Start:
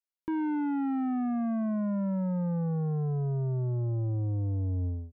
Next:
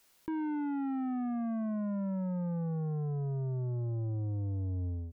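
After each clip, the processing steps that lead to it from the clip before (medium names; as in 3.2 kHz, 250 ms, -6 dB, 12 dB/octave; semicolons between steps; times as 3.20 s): level flattener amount 50%; trim -4.5 dB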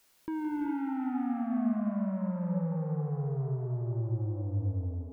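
thinning echo 168 ms, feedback 77%, high-pass 450 Hz, level -7.5 dB; gated-style reverb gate 430 ms rising, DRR 3 dB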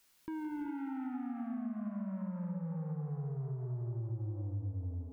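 compression, threshold -32 dBFS, peak gain reduction 7.5 dB; peaking EQ 550 Hz -5.5 dB 1.4 oct; trim -2.5 dB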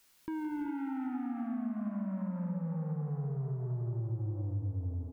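feedback delay 794 ms, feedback 36%, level -18.5 dB; trim +3 dB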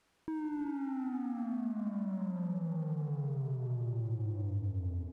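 CVSD coder 64 kbps; low-pass 1.2 kHz 6 dB/octave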